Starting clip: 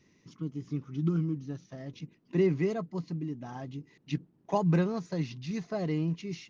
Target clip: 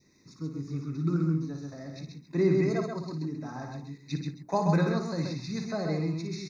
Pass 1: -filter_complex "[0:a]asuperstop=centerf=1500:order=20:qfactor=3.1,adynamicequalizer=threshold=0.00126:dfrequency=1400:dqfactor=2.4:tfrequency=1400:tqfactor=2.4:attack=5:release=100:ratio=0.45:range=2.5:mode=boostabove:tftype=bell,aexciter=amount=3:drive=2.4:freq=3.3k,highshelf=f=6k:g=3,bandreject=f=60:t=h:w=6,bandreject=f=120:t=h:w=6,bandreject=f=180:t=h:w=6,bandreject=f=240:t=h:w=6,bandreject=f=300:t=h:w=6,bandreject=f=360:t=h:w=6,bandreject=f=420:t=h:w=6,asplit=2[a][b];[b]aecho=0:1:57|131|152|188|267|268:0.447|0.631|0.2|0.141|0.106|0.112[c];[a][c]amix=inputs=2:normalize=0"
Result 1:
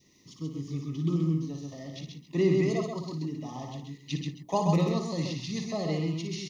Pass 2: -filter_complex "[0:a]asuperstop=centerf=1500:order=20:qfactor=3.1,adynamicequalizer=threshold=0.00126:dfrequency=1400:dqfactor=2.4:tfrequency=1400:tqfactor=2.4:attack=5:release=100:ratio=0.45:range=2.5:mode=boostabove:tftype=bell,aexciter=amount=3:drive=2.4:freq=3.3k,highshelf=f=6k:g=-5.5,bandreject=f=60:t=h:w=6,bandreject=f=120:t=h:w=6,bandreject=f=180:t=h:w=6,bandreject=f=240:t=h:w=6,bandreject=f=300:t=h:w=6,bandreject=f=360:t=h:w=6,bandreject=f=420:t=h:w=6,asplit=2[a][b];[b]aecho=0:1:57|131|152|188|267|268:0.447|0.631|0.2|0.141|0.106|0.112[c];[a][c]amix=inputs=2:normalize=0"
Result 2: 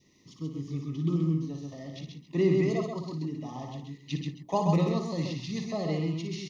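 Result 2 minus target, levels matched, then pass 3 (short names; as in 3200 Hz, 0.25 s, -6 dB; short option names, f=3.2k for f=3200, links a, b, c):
2000 Hz band -3.0 dB
-filter_complex "[0:a]asuperstop=centerf=3100:order=20:qfactor=3.1,adynamicequalizer=threshold=0.00126:dfrequency=1400:dqfactor=2.4:tfrequency=1400:tqfactor=2.4:attack=5:release=100:ratio=0.45:range=2.5:mode=boostabove:tftype=bell,aexciter=amount=3:drive=2.4:freq=3.3k,highshelf=f=6k:g=-5.5,bandreject=f=60:t=h:w=6,bandreject=f=120:t=h:w=6,bandreject=f=180:t=h:w=6,bandreject=f=240:t=h:w=6,bandreject=f=300:t=h:w=6,bandreject=f=360:t=h:w=6,bandreject=f=420:t=h:w=6,asplit=2[a][b];[b]aecho=0:1:57|131|152|188|267|268:0.447|0.631|0.2|0.141|0.106|0.112[c];[a][c]amix=inputs=2:normalize=0"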